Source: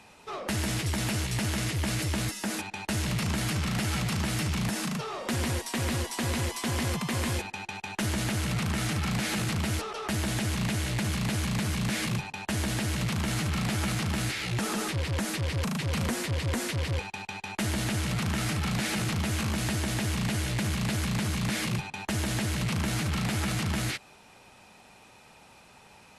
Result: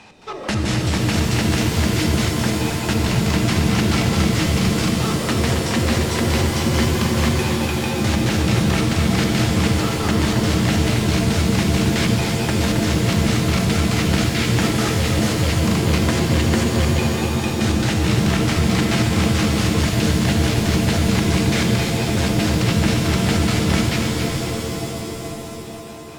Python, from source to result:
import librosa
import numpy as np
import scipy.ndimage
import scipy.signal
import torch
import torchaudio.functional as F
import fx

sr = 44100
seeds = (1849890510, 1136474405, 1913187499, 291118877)

y = fx.filter_lfo_lowpass(x, sr, shape='square', hz=4.6, low_hz=430.0, high_hz=6100.0, q=0.92)
y = fx.echo_split(y, sr, split_hz=560.0, low_ms=476, high_ms=271, feedback_pct=52, wet_db=-7.5)
y = fx.rev_shimmer(y, sr, seeds[0], rt60_s=3.4, semitones=7, shimmer_db=-2, drr_db=3.5)
y = y * 10.0 ** (8.0 / 20.0)